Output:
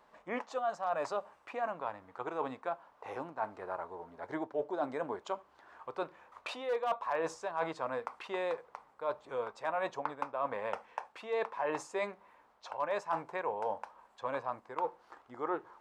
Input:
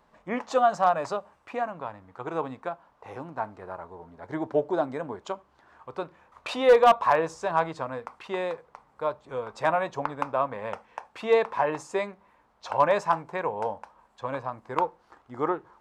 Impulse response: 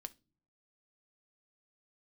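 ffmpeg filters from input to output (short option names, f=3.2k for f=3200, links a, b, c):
-af "bass=f=250:g=-11,treble=f=4k:g=-2,areverse,acompressor=threshold=-31dB:ratio=8,areverse"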